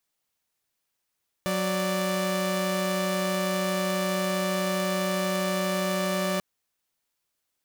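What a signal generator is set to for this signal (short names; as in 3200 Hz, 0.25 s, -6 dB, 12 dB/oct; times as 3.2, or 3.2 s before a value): chord F#3/D5 saw, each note -25 dBFS 4.94 s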